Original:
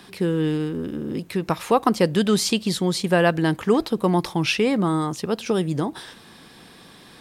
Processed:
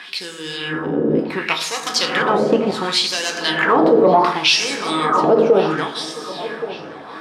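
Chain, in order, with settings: hard clipper -15 dBFS, distortion -14 dB; 2.18–2.72 s: level held to a coarse grid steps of 11 dB; reverberation RT60 1.7 s, pre-delay 5 ms, DRR 0.5 dB; LFO band-pass sine 0.69 Hz 530–6500 Hz; feedback echo behind a low-pass 1122 ms, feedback 51%, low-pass 3 kHz, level -18 dB; loudness maximiser +21.5 dB; 4.62–5.10 s: three bands compressed up and down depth 40%; trim -3.5 dB

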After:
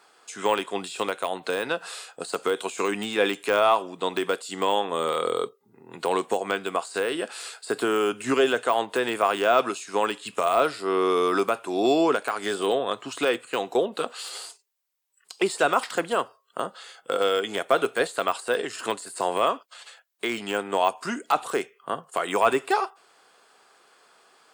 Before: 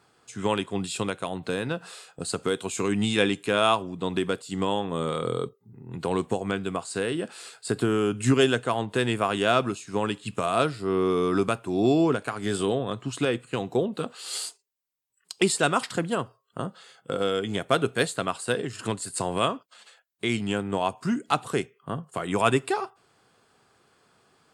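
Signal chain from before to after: high-pass 490 Hz 12 dB/octave; de-esser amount 95%; trim +6.5 dB

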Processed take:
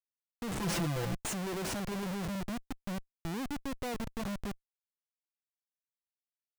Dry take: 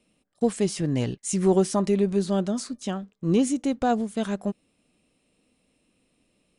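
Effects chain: 2.35–4.07 s: four-pole ladder low-pass 780 Hz, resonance 30%; Schmitt trigger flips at -32.5 dBFS; 0.59–1.16 s: comb 5.9 ms, depth 96%; trim -8 dB

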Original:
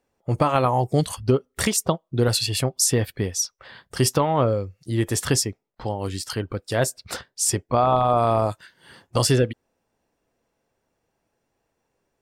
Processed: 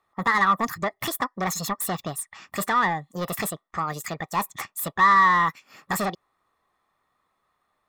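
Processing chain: saturation -19.5 dBFS, distortion -10 dB; peaking EQ 2.1 kHz -5.5 dB 0.26 oct; small resonant body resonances 760/1200/2200 Hz, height 16 dB, ringing for 25 ms; wide varispeed 1.55×; trim -4.5 dB

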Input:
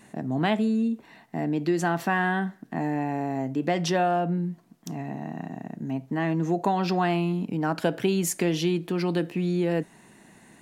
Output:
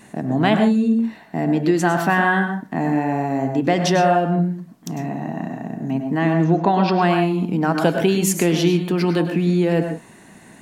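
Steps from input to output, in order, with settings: 6.44–7.02 s: low-pass 4.9 kHz 24 dB/octave; reverberation, pre-delay 92 ms, DRR 5 dB; trim +6.5 dB

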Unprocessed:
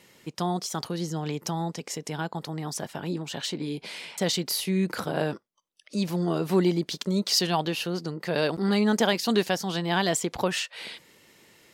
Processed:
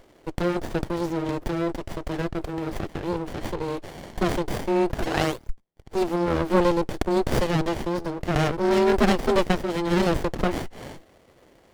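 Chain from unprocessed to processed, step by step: painted sound rise, 5.02–5.50 s, 820–7100 Hz -21 dBFS; frequency shift +170 Hz; sliding maximum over 33 samples; trim +5 dB

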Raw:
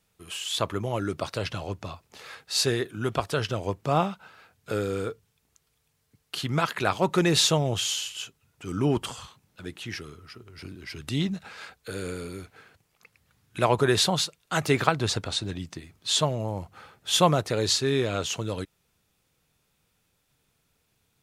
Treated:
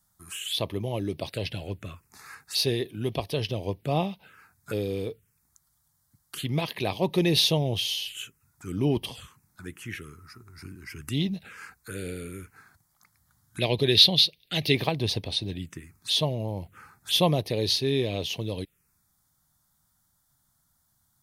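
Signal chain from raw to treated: 13.60–14.75 s: ten-band graphic EQ 1 kHz -9 dB, 2 kHz +3 dB, 4 kHz +10 dB, 8 kHz -6 dB; touch-sensitive phaser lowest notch 440 Hz, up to 1.4 kHz, full sweep at -27 dBFS; treble shelf 7.5 kHz +8 dB

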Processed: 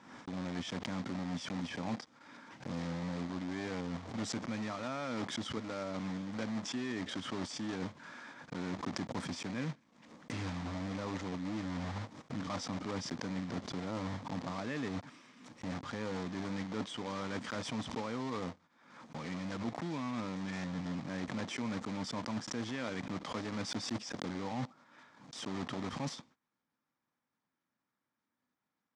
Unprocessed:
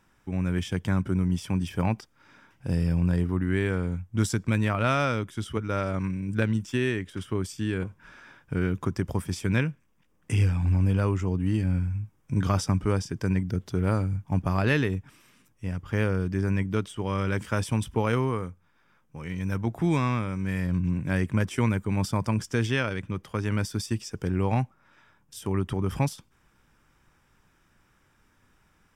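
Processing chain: block-companded coder 3-bit; in parallel at -8 dB: saturation -23 dBFS, distortion -11 dB; on the sum: cabinet simulation 220–6900 Hz, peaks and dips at 250 Hz +6 dB, 390 Hz -7 dB, 1.5 kHz -5 dB, 2.7 kHz -6 dB; reverse; compression 6:1, threshold -37 dBFS, peak gain reduction 17.5 dB; reverse; gate -59 dBFS, range -23 dB; treble shelf 4.8 kHz -9.5 dB; swell ahead of each attack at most 69 dB/s; trim +1 dB

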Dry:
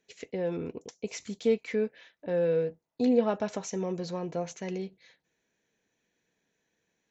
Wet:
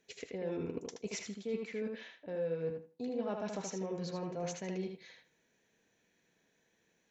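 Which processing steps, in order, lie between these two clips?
reverse; compression 4:1, threshold -40 dBFS, peak gain reduction 17.5 dB; reverse; tape echo 78 ms, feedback 21%, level -3 dB, low-pass 4.5 kHz; trim +2 dB

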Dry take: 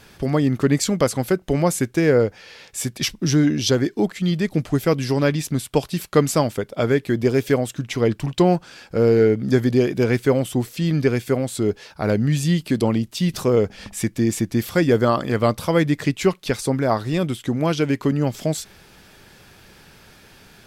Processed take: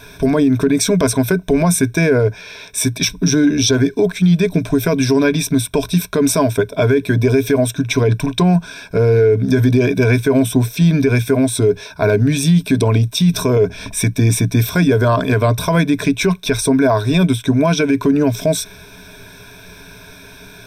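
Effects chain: rippled EQ curve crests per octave 1.6, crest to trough 16 dB; peak limiter -11.5 dBFS, peak gain reduction 12 dB; trim +6 dB

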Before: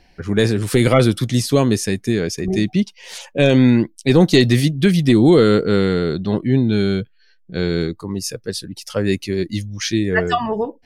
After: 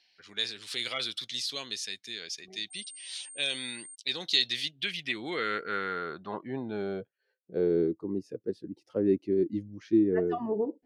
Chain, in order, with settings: band-pass sweep 3.8 kHz -> 330 Hz, 4.48–8.00 s; 2.70–3.94 s: whistle 8.7 kHz -42 dBFS; trim -2 dB

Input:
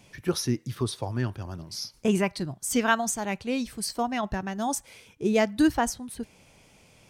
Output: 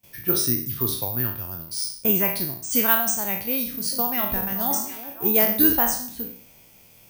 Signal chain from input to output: spectral sustain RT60 0.53 s; gate with hold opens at -46 dBFS; treble shelf 5 kHz +7 dB; 3.55–5.73 s: repeats whose band climbs or falls 187 ms, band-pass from 160 Hz, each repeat 1.4 oct, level -2.5 dB; careless resampling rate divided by 3×, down filtered, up zero stuff; trim -2.5 dB

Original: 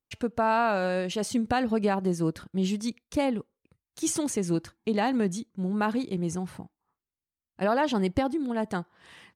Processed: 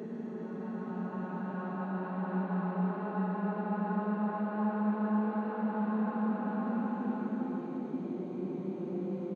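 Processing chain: spectrogram pixelated in time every 400 ms; bass shelf 310 Hz -8 dB; bands offset in time highs, lows 60 ms, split 360 Hz; overload inside the chain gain 30.5 dB; low-pass 1.2 kHz 12 dB/octave; Paulstretch 14×, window 0.25 s, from 5.51 s; steep high-pass 160 Hz; reverberation RT60 0.75 s, pre-delay 105 ms, DRR 9.5 dB; trim +3 dB

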